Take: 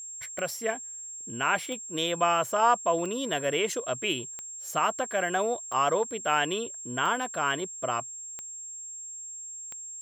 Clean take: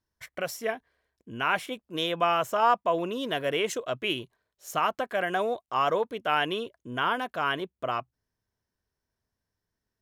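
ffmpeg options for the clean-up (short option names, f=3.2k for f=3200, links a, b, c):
-af "adeclick=t=4,bandreject=f=7.5k:w=30"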